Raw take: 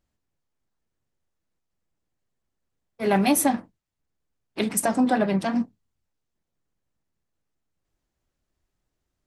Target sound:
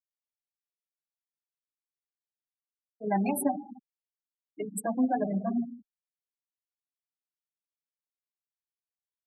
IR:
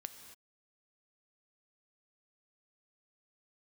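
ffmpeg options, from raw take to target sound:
-filter_complex "[1:a]atrim=start_sample=2205[link_01];[0:a][link_01]afir=irnorm=-1:irlink=0,afftfilt=real='re*gte(hypot(re,im),0.0891)':imag='im*gte(hypot(re,im),0.0891)':win_size=1024:overlap=0.75,asplit=2[link_02][link_03];[link_03]adelay=5.4,afreqshift=1.8[link_04];[link_02][link_04]amix=inputs=2:normalize=1"

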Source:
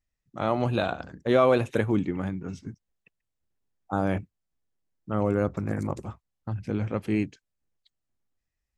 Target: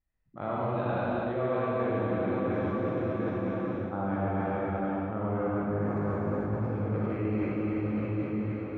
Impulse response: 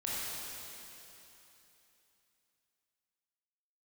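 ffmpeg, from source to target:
-filter_complex "[0:a]lowpass=2000[link_01];[1:a]atrim=start_sample=2205,asetrate=22932,aresample=44100[link_02];[link_01][link_02]afir=irnorm=-1:irlink=0,areverse,acompressor=threshold=-25dB:ratio=6,areverse,volume=-2dB"

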